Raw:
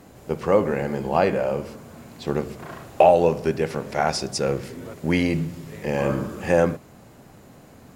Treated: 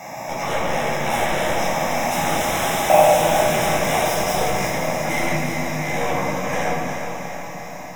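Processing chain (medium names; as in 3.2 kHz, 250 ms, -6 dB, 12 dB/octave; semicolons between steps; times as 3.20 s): spectral levelling over time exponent 0.6; Doppler pass-by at 2.79 s, 15 m/s, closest 7.5 m; high-pass 730 Hz 6 dB/octave; treble shelf 9.9 kHz +9.5 dB; static phaser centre 2.1 kHz, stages 8; in parallel at -5.5 dB: sine folder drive 17 dB, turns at -23.5 dBFS; on the sum: Butterworth band-stop 4.5 kHz, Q 3.1; echo whose repeats swap between lows and highs 138 ms, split 2.4 kHz, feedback 77%, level -7 dB; reverberation RT60 0.70 s, pre-delay 11 ms, DRR -5 dB; bit-crushed delay 356 ms, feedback 55%, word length 8-bit, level -8 dB; trim -1.5 dB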